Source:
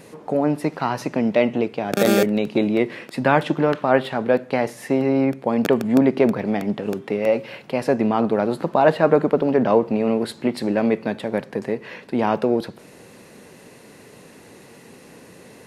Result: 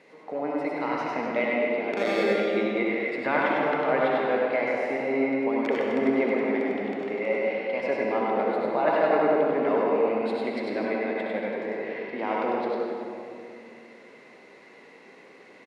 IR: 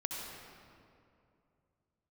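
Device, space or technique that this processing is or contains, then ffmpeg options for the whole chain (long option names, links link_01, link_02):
station announcement: -filter_complex "[0:a]highpass=330,lowpass=4000,equalizer=frequency=2100:width_type=o:width=0.2:gain=11,aecho=1:1:99.13|253.6:0.708|0.251[link_01];[1:a]atrim=start_sample=2205[link_02];[link_01][link_02]afir=irnorm=-1:irlink=0,volume=-8dB"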